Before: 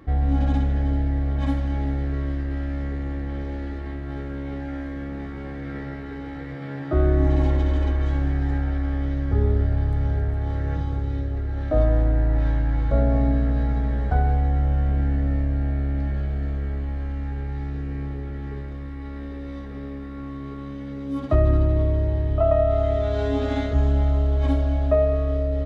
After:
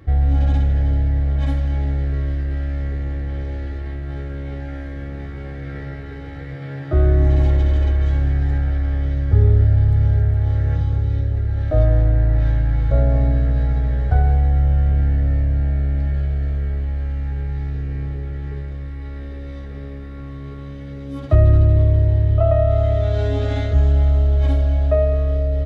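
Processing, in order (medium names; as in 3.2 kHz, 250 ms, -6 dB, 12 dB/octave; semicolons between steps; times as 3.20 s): fifteen-band graphic EQ 100 Hz +10 dB, 250 Hz -8 dB, 1 kHz -7 dB; trim +2.5 dB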